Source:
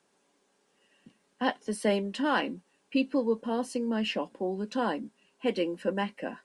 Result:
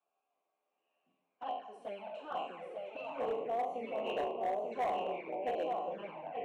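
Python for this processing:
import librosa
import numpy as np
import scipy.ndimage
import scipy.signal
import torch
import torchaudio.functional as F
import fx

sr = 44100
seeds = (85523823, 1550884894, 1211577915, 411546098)

y = fx.spec_trails(x, sr, decay_s=0.82)
y = fx.vowel_filter(y, sr, vowel='a')
y = fx.echo_pitch(y, sr, ms=303, semitones=-3, count=3, db_per_echo=-6.0)
y = fx.peak_eq(y, sr, hz=660.0, db=8.0, octaves=2.5, at=(3.18, 5.66), fade=0.02)
y = y + 10.0 ** (-5.0 / 20.0) * np.pad(y, (int(889 * sr / 1000.0), 0))[:len(y)]
y = fx.env_flanger(y, sr, rest_ms=11.9, full_db=-30.0)
y = np.clip(y, -10.0 ** (-27.5 / 20.0), 10.0 ** (-27.5 / 20.0))
y = fx.peak_eq(y, sr, hz=4800.0, db=-13.0, octaves=0.25)
y = y * librosa.db_to_amplitude(-2.0)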